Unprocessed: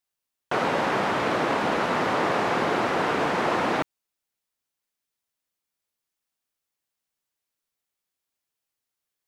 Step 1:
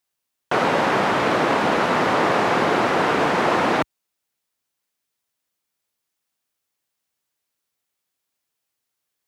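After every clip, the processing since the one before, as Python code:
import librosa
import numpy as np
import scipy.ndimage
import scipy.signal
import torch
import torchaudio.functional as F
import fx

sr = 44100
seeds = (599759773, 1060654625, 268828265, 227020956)

y = scipy.signal.sosfilt(scipy.signal.butter(2, 59.0, 'highpass', fs=sr, output='sos'), x)
y = y * librosa.db_to_amplitude(5.0)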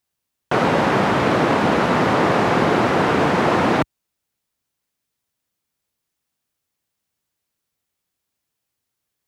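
y = fx.low_shelf(x, sr, hz=230.0, db=11.0)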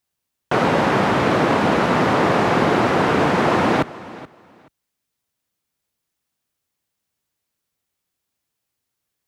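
y = fx.echo_feedback(x, sr, ms=428, feedback_pct=20, wet_db=-18.5)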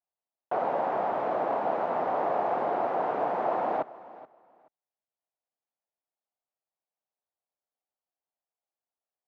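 y = fx.bandpass_q(x, sr, hz=710.0, q=2.8)
y = y * librosa.db_to_amplitude(-4.5)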